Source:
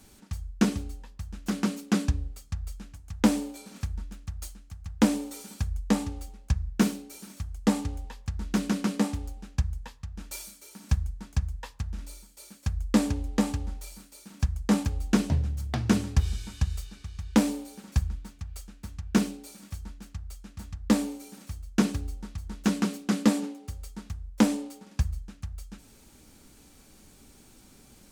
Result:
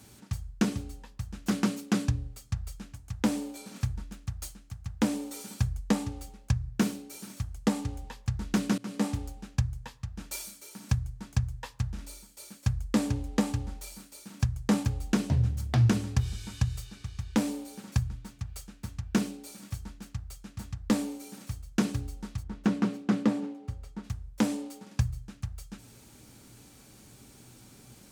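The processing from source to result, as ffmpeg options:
-filter_complex "[0:a]asplit=3[a][b][c];[a]afade=t=out:st=22.42:d=0.02[d];[b]lowpass=f=1.6k:p=1,afade=t=in:st=22.42:d=0.02,afade=t=out:st=24.03:d=0.02[e];[c]afade=t=in:st=24.03:d=0.02[f];[d][e][f]amix=inputs=3:normalize=0,asplit=2[g][h];[g]atrim=end=8.78,asetpts=PTS-STARTPTS,afade=t=out:st=8.776:d=0.004:c=hsin:silence=0.0749894[i];[h]atrim=start=8.78,asetpts=PTS-STARTPTS,afade=t=in:d=0.41:silence=0.0749894[j];[i][j]concat=n=2:v=0:a=1,highpass=f=75:p=1,equalizer=f=120:t=o:w=0.22:g=14.5,alimiter=limit=-15.5dB:level=0:latency=1:release=392,volume=1.5dB"

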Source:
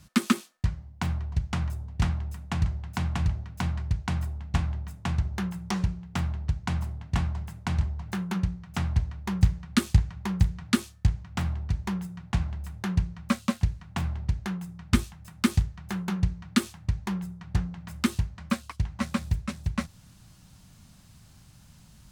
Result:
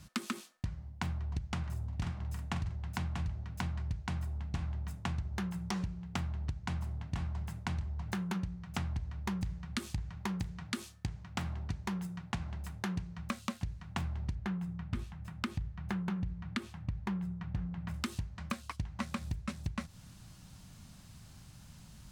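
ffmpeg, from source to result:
-filter_complex "[0:a]asettb=1/sr,asplit=3[a][b][c];[a]atrim=end=1.594[d];[b]atrim=start=1.59:end=2.76,asetpts=PTS-STARTPTS,afade=t=in:d=0.004:c=qsin,afade=t=out:st=1.166:d=0.004:c=qsin,asplit=2[e][f];[f]adelay=46,volume=-7dB[g];[e][g]amix=inputs=2:normalize=0,atrim=end_sample=51597[h];[c]atrim=start=2.756[i];[d][h]acrossfade=d=0.004:c1=hsin:c2=qsin[j];[j][i]acrossfade=d=0.004:c1=qsin:c2=hsin,asettb=1/sr,asplit=3[k][l][m];[k]atrim=end=10.164[n];[l]atrim=start=10.16:end=13.17,asetpts=PTS-STARTPTS,afade=t=in:d=0.004:c=qsin,afade=t=out:st=3.006:d=0.004:c=qsin,lowshelf=f=78:g=-10.5[o];[m]atrim=start=13.166[p];[n][o]acrossfade=d=0.004:c1=hsin:c2=qsin[q];[q][p]acrossfade=d=0.004:c1=qsin:c2=hsin,asettb=1/sr,asplit=3[r][s][t];[r]atrim=end=14.354[u];[s]atrim=start=14.35:end=17.94,asetpts=PTS-STARTPTS,afade=t=in:d=0.004:c=qsin,afade=t=out:st=3.586:d=0.004:c=qsin,bass=f=250:g=3,treble=f=4k:g=-11[v];[t]atrim=start=17.936[w];[u][v]acrossfade=d=0.004:c1=hsin:c2=qsin[x];[x][w]acrossfade=d=0.004:c1=qsin:c2=hsin,highshelf=f=11k:g=-3,alimiter=limit=-18dB:level=0:latency=1:release=73,acompressor=threshold=-33dB:ratio=6"

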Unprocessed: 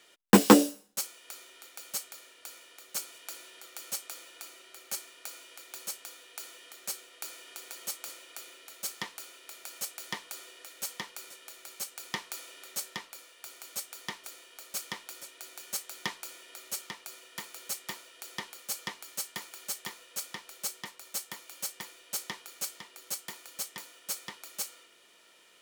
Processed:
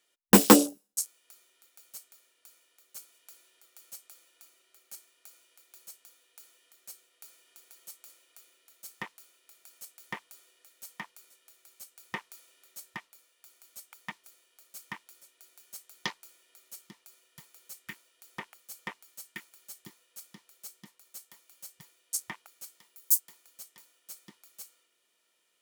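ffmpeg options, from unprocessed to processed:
-filter_complex "[0:a]asettb=1/sr,asplit=3[a][b][c];[a]atrim=end=22.804[d];[b]atrim=start=22.8:end=23.2,asetpts=PTS-STARTPTS,afade=t=in:d=0.004:c=qsin,afade=t=out:st=0.396:d=0.004:c=qsin,highshelf=f=10k:g=11[e];[c]atrim=start=23.196[f];[d][e]acrossfade=d=0.004:c1=hsin:c2=qsin[g];[g][f]acrossfade=d=0.004:c1=qsin:c2=hsin,afwtdn=0.01,highshelf=f=7.4k:g=9.5"

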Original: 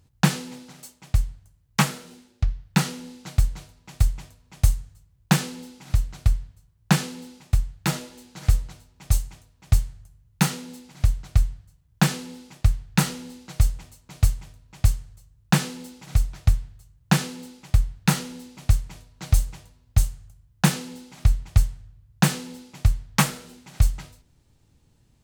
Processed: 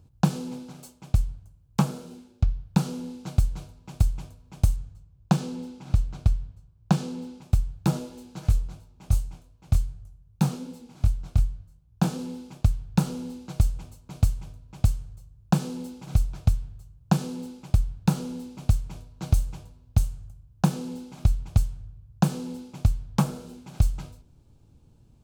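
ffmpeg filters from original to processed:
-filter_complex "[0:a]asettb=1/sr,asplit=3[a][b][c];[a]atrim=end=4.764[d];[b]atrim=start=4.76:end=7.42,asetpts=PTS-STARTPTS,afade=t=in:d=0.004:c=qsin,afade=t=out:st=2.656:d=0.004:c=qsin,equalizer=f=14k:t=o:w=1.1:g=-9.5[e];[c]atrim=start=7.416[f];[d][e]acrossfade=d=0.004:c1=hsin:c2=qsin[g];[g][f]acrossfade=d=0.004:c1=qsin:c2=hsin,asplit=3[h][i][j];[h]afade=t=out:st=8.4:d=0.02[k];[i]flanger=delay=17.5:depth=7.8:speed=2.6,afade=t=in:st=8.4:d=0.02,afade=t=out:st=12.18:d=0.02[l];[j]afade=t=in:st=12.18:d=0.02[m];[k][l][m]amix=inputs=3:normalize=0,equalizer=f=1.9k:w=7.5:g=-13.5,acrossover=split=1300|3100[n][o][p];[n]acompressor=threshold=-22dB:ratio=4[q];[o]acompressor=threshold=-48dB:ratio=4[r];[p]acompressor=threshold=-34dB:ratio=4[s];[q][r][s]amix=inputs=3:normalize=0,tiltshelf=f=1.1k:g=5"

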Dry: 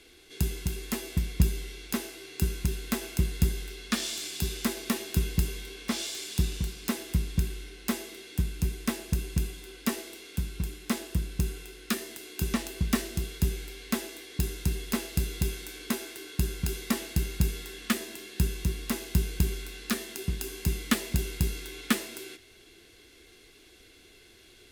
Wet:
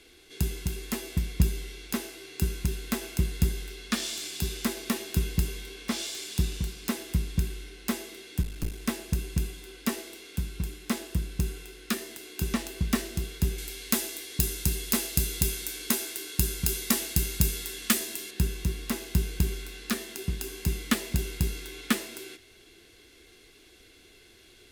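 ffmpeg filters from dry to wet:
-filter_complex "[0:a]asettb=1/sr,asplit=3[a][b][c];[a]atrim=end=8.424[d];[b]atrim=start=8.42:end=8.83,asetpts=PTS-STARTPTS,afade=t=in:d=0.004:c=qsin,afade=t=out:st=0.406:d=0.004:c=qsin,aeval=exprs='clip(val(0),-1,0.0106)':c=same[e];[c]atrim=start=8.826[f];[d][e]acrossfade=d=0.004:c1=hsin:c2=qsin[g];[g][f]acrossfade=d=0.004:c1=qsin:c2=hsin,asettb=1/sr,asplit=3[h][i][j];[h]atrim=end=13.584[k];[i]atrim=start=13.58:end=18.31,asetpts=PTS-STARTPTS,afade=t=in:d=0.004:c=qsin,afade=t=out:st=4.726:d=0.004:c=qsin,highshelf=f=4.2k:g=11[l];[j]atrim=start=18.306[m];[k][l]acrossfade=d=0.004:c1=hsin:c2=qsin[n];[n][m]acrossfade=d=0.004:c1=qsin:c2=hsin"

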